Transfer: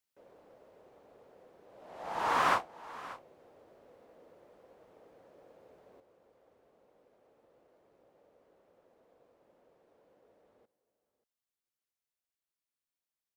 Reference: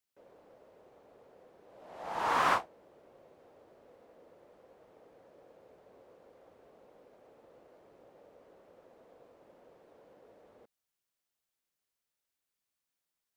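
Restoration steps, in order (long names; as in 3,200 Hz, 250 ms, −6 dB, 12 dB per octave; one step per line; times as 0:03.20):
echo removal 584 ms −17.5 dB
level correction +7.5 dB, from 0:06.00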